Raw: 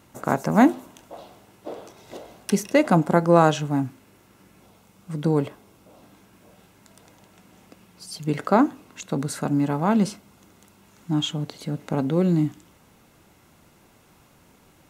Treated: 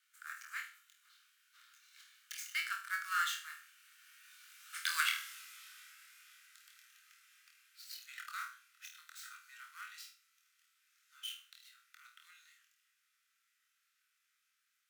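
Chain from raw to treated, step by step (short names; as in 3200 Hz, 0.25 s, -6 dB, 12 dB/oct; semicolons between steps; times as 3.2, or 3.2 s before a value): switching dead time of 0.054 ms; Doppler pass-by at 5.15, 25 m/s, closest 5.2 m; steep high-pass 1300 Hz 72 dB/oct; frequency shift +20 Hz; on a send: flutter echo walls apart 4.3 m, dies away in 0.37 s; on the sum: gain +12.5 dB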